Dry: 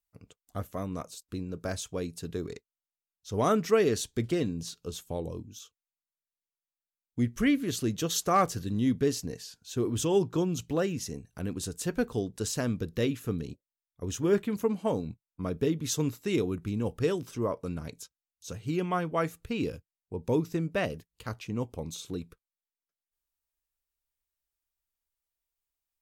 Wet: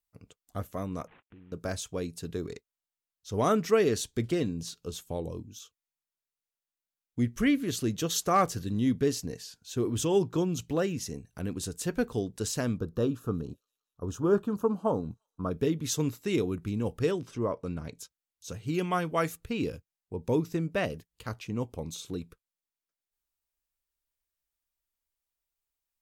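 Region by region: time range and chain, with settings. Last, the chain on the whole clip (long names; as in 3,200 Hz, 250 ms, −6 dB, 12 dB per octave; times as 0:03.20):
0:01.07–0:01.52: variable-slope delta modulation 16 kbit/s + downward compressor 3 to 1, threshold −55 dBFS
0:12.78–0:15.51: Butterworth band-reject 2,100 Hz, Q 4.3 + high shelf with overshoot 1,600 Hz −7.5 dB, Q 3 + delay with a high-pass on its return 173 ms, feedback 53%, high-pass 3,900 Hz, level −21.5 dB
0:17.11–0:17.99: low-pass filter 11,000 Hz + high-shelf EQ 5,900 Hz −7.5 dB
0:18.74–0:19.37: high-shelf EQ 2,600 Hz +7.5 dB + one half of a high-frequency compander decoder only
whole clip: no processing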